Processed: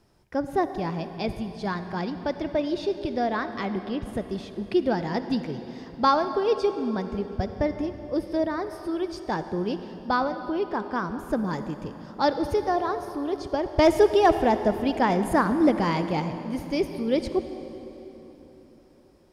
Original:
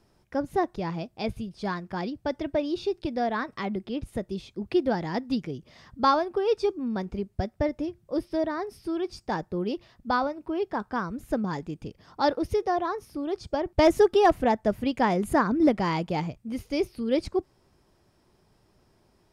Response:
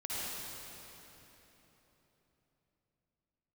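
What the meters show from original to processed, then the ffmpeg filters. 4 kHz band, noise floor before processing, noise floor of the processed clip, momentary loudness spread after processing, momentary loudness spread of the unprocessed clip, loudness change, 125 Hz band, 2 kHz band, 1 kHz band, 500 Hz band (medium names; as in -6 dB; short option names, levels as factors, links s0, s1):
+1.5 dB, -66 dBFS, -52 dBFS, 11 LU, 11 LU, +1.5 dB, +2.0 dB, +1.5 dB, +1.5 dB, +1.5 dB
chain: -filter_complex "[0:a]asplit=2[s0][s1];[1:a]atrim=start_sample=2205[s2];[s1][s2]afir=irnorm=-1:irlink=0,volume=0.251[s3];[s0][s3]amix=inputs=2:normalize=0"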